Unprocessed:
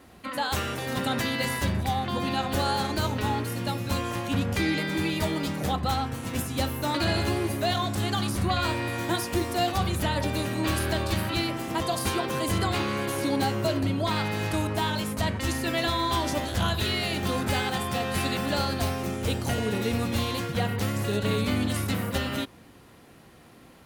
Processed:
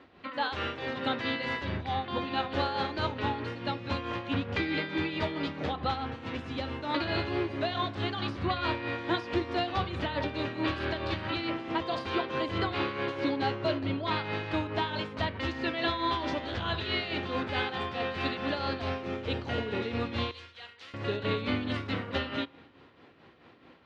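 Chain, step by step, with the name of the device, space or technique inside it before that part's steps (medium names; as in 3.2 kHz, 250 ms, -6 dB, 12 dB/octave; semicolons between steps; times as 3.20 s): 20.31–20.94 s: differentiator; combo amplifier with spring reverb and tremolo (spring tank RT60 1.2 s, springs 36 ms, DRR 18.5 dB; tremolo 4.6 Hz, depth 56%; cabinet simulation 100–3900 Hz, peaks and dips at 130 Hz -7 dB, 200 Hz -8 dB, 720 Hz -3 dB)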